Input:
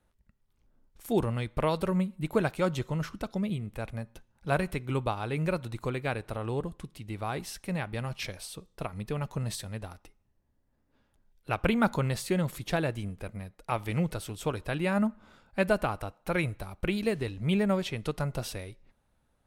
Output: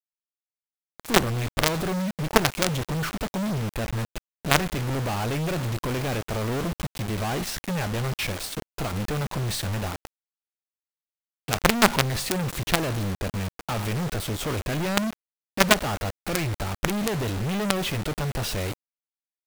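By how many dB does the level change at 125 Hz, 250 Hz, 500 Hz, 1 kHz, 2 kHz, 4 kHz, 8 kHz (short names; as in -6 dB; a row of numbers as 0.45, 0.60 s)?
+5.0, +3.0, +2.5, +6.5, +8.0, +12.5, +13.5 dB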